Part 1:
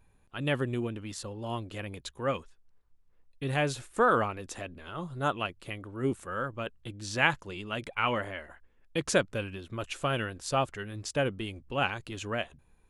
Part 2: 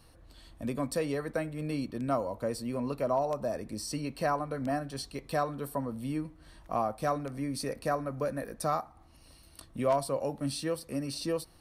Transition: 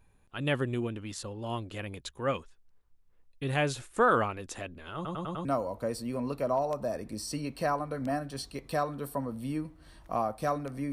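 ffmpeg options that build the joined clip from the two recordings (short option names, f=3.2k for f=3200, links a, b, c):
-filter_complex "[0:a]apad=whole_dur=10.92,atrim=end=10.92,asplit=5[a][b][c][d][e];[a]atrim=end=5.052[f];[b]atrim=start=4.948:end=5.052[g];[c]atrim=start=4.948:end=5.052[h];[d]atrim=start=4.948:end=5.052[i];[e]atrim=start=4.948:end=5.052[j];[1:a]atrim=start=2.048:end=7.52[k];[f][g]acrossfade=d=0.004:c1=hsin:c2=hsin[l];[l][h]acrossfade=d=0.004:c1=hsin:c2=hsin[m];[m][i]acrossfade=d=0.004:c1=hsin:c2=hsin[n];[n][j]acrossfade=d=0.004:c1=hsin:c2=hsin[o];[o][k]acrossfade=d=0.004:c1=hsin:c2=hsin"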